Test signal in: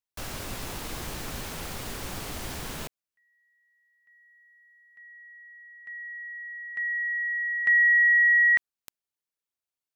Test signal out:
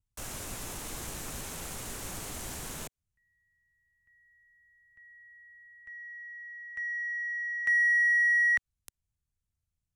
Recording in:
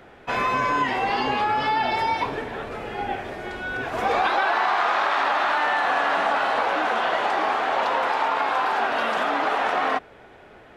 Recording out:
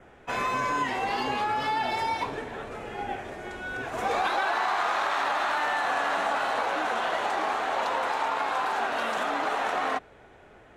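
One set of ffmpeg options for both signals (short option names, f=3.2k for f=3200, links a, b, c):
-filter_complex "[0:a]adynamicequalizer=threshold=0.00398:dfrequency=4100:dqfactor=4.5:tfrequency=4100:tqfactor=4.5:attack=5:release=100:ratio=0.375:range=2.5:mode=boostabove:tftype=bell,acrossover=split=110|3100[a][b][c];[a]acompressor=mode=upward:threshold=-55dB:ratio=2.5:release=53:knee=2.83:detection=peak[d];[d][b][c]amix=inputs=3:normalize=0,aexciter=amount=5.7:drive=2:freq=6.3k,adynamicsmooth=sensitivity=5:basefreq=6.5k,volume=-5dB"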